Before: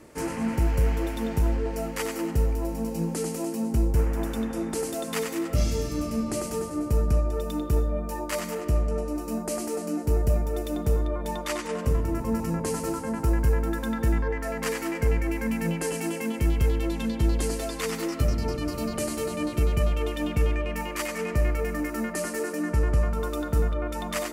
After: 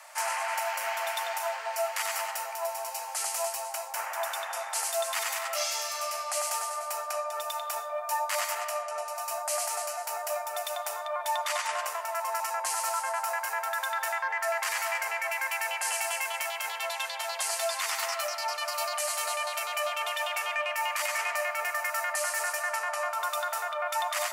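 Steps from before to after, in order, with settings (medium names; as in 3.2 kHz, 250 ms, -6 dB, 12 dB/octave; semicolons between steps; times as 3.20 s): steep high-pass 640 Hz 72 dB/octave; peak limiter -27.5 dBFS, peak gain reduction 9.5 dB; trim +7.5 dB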